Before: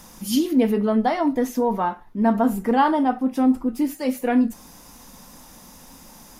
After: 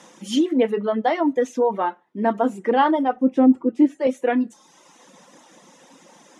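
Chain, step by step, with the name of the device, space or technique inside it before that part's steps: television speaker (speaker cabinet 180–7800 Hz, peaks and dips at 230 Hz -5 dB, 340 Hz +5 dB, 530 Hz +6 dB, 1900 Hz +4 dB, 3200 Hz +4 dB, 4800 Hz -8 dB); reverb removal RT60 0.87 s; 3.16–4.07 tilt -3 dB/oct

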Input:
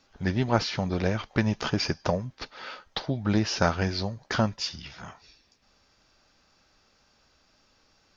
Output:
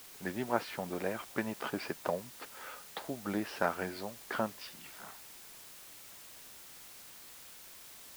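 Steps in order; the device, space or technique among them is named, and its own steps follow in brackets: wax cylinder (BPF 280–2400 Hz; wow and flutter; white noise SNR 12 dB); gain -6 dB

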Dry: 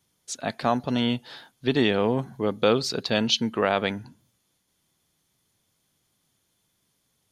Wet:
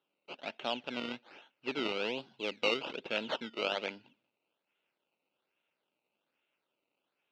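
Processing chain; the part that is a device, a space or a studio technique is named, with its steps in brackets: circuit-bent sampling toy (decimation with a swept rate 18×, swing 100% 1.2 Hz; speaker cabinet 420–4100 Hz, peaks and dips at 440 Hz -3 dB, 730 Hz -6 dB, 1100 Hz -9 dB, 1800 Hz -9 dB, 2700 Hz +9 dB); 2.2–2.77 high shelf 5200 Hz +7.5 dB; gain -7 dB

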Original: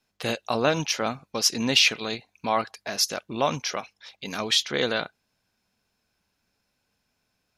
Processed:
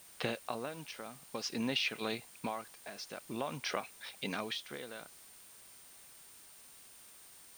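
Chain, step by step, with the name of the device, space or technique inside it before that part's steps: medium wave at night (BPF 110–3700 Hz; compressor, threshold -32 dBFS, peak gain reduction 14.5 dB; tremolo 0.51 Hz, depth 74%; whine 9000 Hz -60 dBFS; white noise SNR 16 dB); gain +1 dB

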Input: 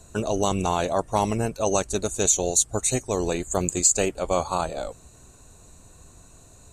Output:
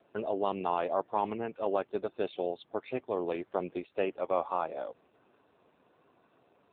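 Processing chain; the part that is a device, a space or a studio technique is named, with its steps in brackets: 1.01–1.66 dynamic EQ 600 Hz, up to -5 dB, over -37 dBFS, Q 3.3; telephone (BPF 300–3400 Hz; gain -5 dB; AMR-NB 7.4 kbps 8000 Hz)

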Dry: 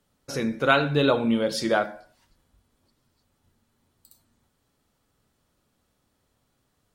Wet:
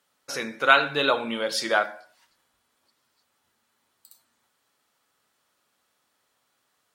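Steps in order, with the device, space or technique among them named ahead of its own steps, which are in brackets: filter by subtraction (in parallel: LPF 1400 Hz 12 dB/oct + phase invert); on the sum: gain +2.5 dB

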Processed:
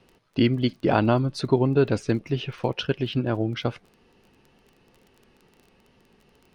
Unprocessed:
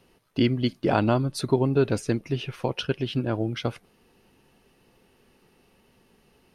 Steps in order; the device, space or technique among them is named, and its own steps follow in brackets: lo-fi chain (LPF 5400 Hz 12 dB/oct; wow and flutter 29 cents; crackle 21/s -42 dBFS); gain +1.5 dB

